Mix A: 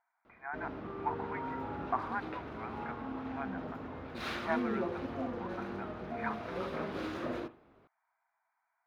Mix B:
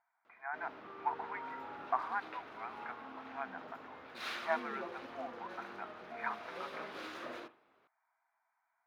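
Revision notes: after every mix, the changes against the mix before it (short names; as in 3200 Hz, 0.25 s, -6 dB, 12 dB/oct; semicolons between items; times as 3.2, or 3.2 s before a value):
background: add HPF 1200 Hz 6 dB/oct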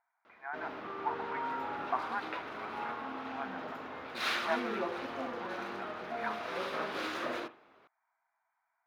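background +8.5 dB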